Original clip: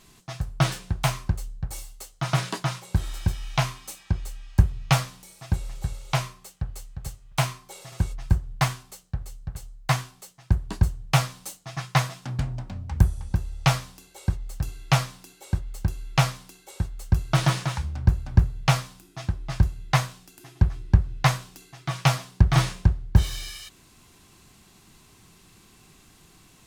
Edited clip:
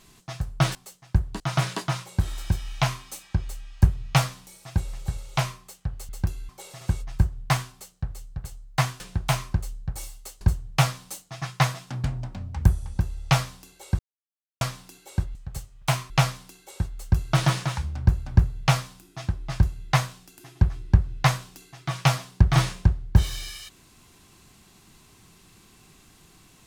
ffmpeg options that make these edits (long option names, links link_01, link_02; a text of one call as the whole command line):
ffmpeg -i in.wav -filter_complex "[0:a]asplit=11[link_01][link_02][link_03][link_04][link_05][link_06][link_07][link_08][link_09][link_10][link_11];[link_01]atrim=end=0.752[link_12];[link_02]atrim=start=10.108:end=10.762[link_13];[link_03]atrim=start=2.158:end=6.852[link_14];[link_04]atrim=start=15.698:end=16.102[link_15];[link_05]atrim=start=7.598:end=10.112[link_16];[link_06]atrim=start=0.748:end=2.162[link_17];[link_07]atrim=start=10.758:end=14.34,asetpts=PTS-STARTPTS,afade=type=out:start_time=3.578:duration=0.004:curve=hsin[link_18];[link_08]atrim=start=14.34:end=14.96,asetpts=PTS-STARTPTS,volume=0[link_19];[link_09]atrim=start=14.96:end=15.702,asetpts=PTS-STARTPTS,afade=type=in:duration=0.004:curve=hsin[link_20];[link_10]atrim=start=6.848:end=7.602[link_21];[link_11]atrim=start=16.098[link_22];[link_12][link_13]acrossfade=duration=0.004:curve1=hsin:curve2=hsin[link_23];[link_23][link_14]acrossfade=duration=0.004:curve1=hsin:curve2=hsin[link_24];[link_24][link_15]acrossfade=duration=0.004:curve1=hsin:curve2=hsin[link_25];[link_25][link_16]acrossfade=duration=0.004:curve1=hsin:curve2=hsin[link_26];[link_26][link_17]acrossfade=duration=0.004:curve1=hsin:curve2=hsin[link_27];[link_18][link_19][link_20]concat=n=3:v=0:a=1[link_28];[link_27][link_28]acrossfade=duration=0.004:curve1=hsin:curve2=hsin[link_29];[link_29][link_21]acrossfade=duration=0.004:curve1=hsin:curve2=hsin[link_30];[link_30][link_22]acrossfade=duration=0.004:curve1=hsin:curve2=hsin" out.wav